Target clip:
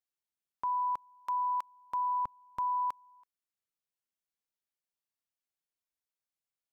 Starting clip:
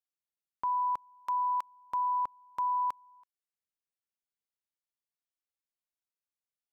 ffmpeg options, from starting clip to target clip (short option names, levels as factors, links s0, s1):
-filter_complex "[0:a]asettb=1/sr,asplit=3[s0][s1][s2];[s0]atrim=end=2.094[s3];[s1]atrim=start=2.09:end=2.62,asetpts=PTS-STARTPTS,afade=t=in:d=0.004:c=qsin,afade=t=out:st=0.526:d=0.004:c=qsin,bass=f=250:g=11,treble=f=4000:g=-1[s4];[s2]atrim=start=2.616[s5];[s3][s4]acrossfade=d=0.004:c1=hsin:c2=qsin[s6];[s6][s5]acrossfade=d=0.004:c1=qsin:c2=hsin,volume=0.841"